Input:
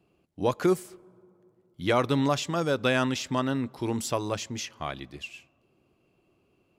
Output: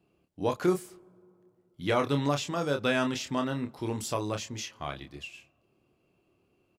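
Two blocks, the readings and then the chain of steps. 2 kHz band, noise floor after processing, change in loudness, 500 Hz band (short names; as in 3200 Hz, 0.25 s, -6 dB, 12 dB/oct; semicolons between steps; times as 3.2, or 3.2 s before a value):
-2.5 dB, -72 dBFS, -2.5 dB, -2.5 dB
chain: doubler 28 ms -6 dB; gain -3.5 dB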